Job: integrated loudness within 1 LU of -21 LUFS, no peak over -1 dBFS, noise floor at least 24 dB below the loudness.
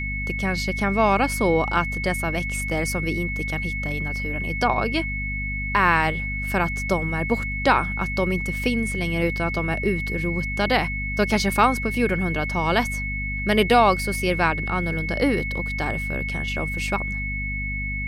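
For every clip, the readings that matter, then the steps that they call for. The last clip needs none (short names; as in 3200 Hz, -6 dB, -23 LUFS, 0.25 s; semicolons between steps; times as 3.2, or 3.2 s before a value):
hum 50 Hz; harmonics up to 250 Hz; hum level -27 dBFS; steady tone 2200 Hz; tone level -28 dBFS; loudness -23.0 LUFS; peak -5.0 dBFS; loudness target -21.0 LUFS
-> notches 50/100/150/200/250 Hz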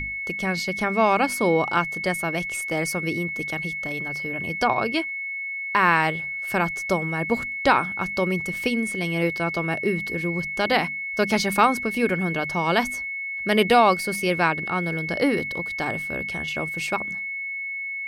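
hum none; steady tone 2200 Hz; tone level -28 dBFS
-> notch 2200 Hz, Q 30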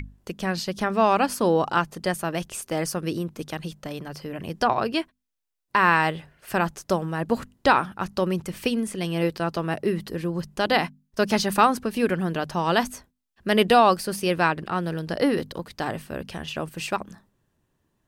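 steady tone none; loudness -24.5 LUFS; peak -6.0 dBFS; loudness target -21.0 LUFS
-> gain +3.5 dB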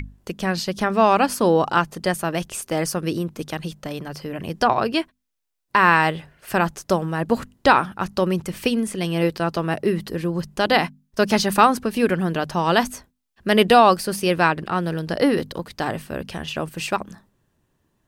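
loudness -21.0 LUFS; peak -2.5 dBFS; noise floor -71 dBFS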